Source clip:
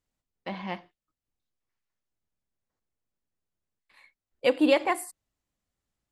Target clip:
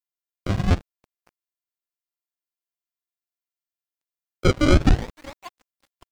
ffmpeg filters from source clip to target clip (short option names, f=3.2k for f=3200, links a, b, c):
-filter_complex "[0:a]highpass=f=130:w=0.5412,highpass=f=130:w=1.3066,asplit=2[a][b];[b]adelay=558,lowpass=f=2.5k:p=1,volume=-21dB,asplit=2[c][d];[d]adelay=558,lowpass=f=2.5k:p=1,volume=0.5,asplit=2[e][f];[f]adelay=558,lowpass=f=2.5k:p=1,volume=0.5,asplit=2[g][h];[h]adelay=558,lowpass=f=2.5k:p=1,volume=0.5[i];[a][c][e][g][i]amix=inputs=5:normalize=0,alimiter=limit=-16.5dB:level=0:latency=1:release=491,equalizer=f=1k:w=1.6:g=11.5,bandreject=f=60:t=h:w=6,bandreject=f=120:t=h:w=6,bandreject=f=180:t=h:w=6,bandreject=f=240:t=h:w=6,bandreject=f=300:t=h:w=6,acrusher=samples=28:mix=1:aa=0.000001:lfo=1:lforange=44.8:lforate=0.49,asubboost=boost=4:cutoff=190,aeval=exprs='sgn(val(0))*max(abs(val(0))-0.01,0)':c=same,acrossover=split=7000[j][k];[k]acompressor=threshold=-59dB:ratio=4:attack=1:release=60[l];[j][l]amix=inputs=2:normalize=0,asoftclip=type=tanh:threshold=-13dB,volume=9dB" -ar 44100 -c:a nellymoser